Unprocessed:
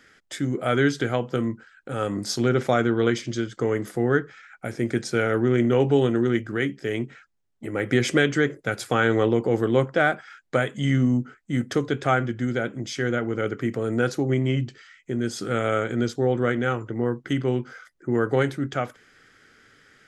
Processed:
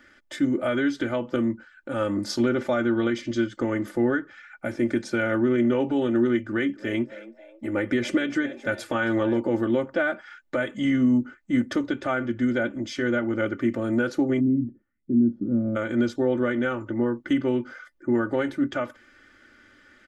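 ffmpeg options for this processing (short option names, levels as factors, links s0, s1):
-filter_complex "[0:a]asettb=1/sr,asplit=3[s0][s1][s2];[s0]atrim=end=6.414[s3];[s1]atrim=start=6.41:end=9.4,asetpts=PTS-STARTPTS,afade=t=in:d=0.004:c=qsin,afade=t=out:st=2.986:d=0.004:c=qsin,asplit=4[s4][s5][s6][s7];[s5]adelay=270,afreqshift=100,volume=0.126[s8];[s6]adelay=540,afreqshift=200,volume=0.0501[s9];[s7]adelay=810,afreqshift=300,volume=0.0202[s10];[s4][s8][s9][s10]amix=inputs=4:normalize=0,atrim=end_sample=131859[s11];[s2]atrim=start=9.396[s12];[s3][s11]acrossfade=d=0.004:c1=hsin:c2=qsin[s13];[s13][s12]acrossfade=d=0.004:c1=qsin:c2=hsin,asplit=3[s14][s15][s16];[s14]afade=t=out:st=14.39:d=0.02[s17];[s15]lowpass=f=230:t=q:w=2.1,afade=t=in:st=14.39:d=0.02,afade=t=out:st=15.75:d=0.02[s18];[s16]afade=t=in:st=15.75:d=0.02[s19];[s17][s18][s19]amix=inputs=3:normalize=0,alimiter=limit=0.188:level=0:latency=1:release=210,equalizer=f=9200:w=0.44:g=-9,aecho=1:1:3.4:0.83"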